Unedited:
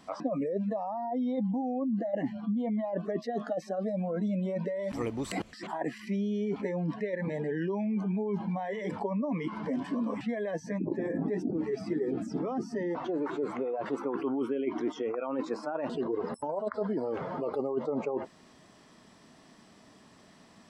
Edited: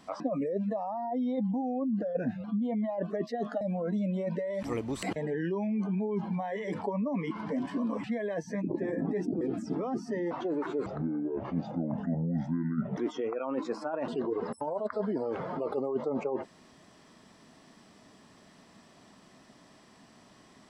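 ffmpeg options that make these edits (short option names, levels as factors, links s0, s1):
-filter_complex "[0:a]asplit=8[s0][s1][s2][s3][s4][s5][s6][s7];[s0]atrim=end=2.024[s8];[s1]atrim=start=2.02:end=2.39,asetpts=PTS-STARTPTS,asetrate=38808,aresample=44100,atrim=end_sample=18542,asetpts=PTS-STARTPTS[s9];[s2]atrim=start=2.386:end=3.562[s10];[s3]atrim=start=3.898:end=5.452[s11];[s4]atrim=start=7.328:end=11.582[s12];[s5]atrim=start=12.048:end=13.504[s13];[s6]atrim=start=13.5:end=14.79,asetpts=PTS-STARTPTS,asetrate=26901,aresample=44100[s14];[s7]atrim=start=14.786[s15];[s8][s9]acrossfade=d=0.004:c1=hsin:c2=hsin[s16];[s16][s10]acrossfade=d=0.004:c1=hsin:c2=hsin[s17];[s17][s11]acrossfade=d=0.004:c1=hsin:c2=hsin[s18];[s18][s12]acrossfade=d=0.004:c1=hsin:c2=hsin[s19];[s19][s13]acrossfade=d=0.004:c1=hsin:c2=hsin[s20];[s20][s14]acrossfade=d=0.004:c1=hsin:c2=hsin[s21];[s21][s15]acrossfade=d=0.004:c1=hsin:c2=hsin"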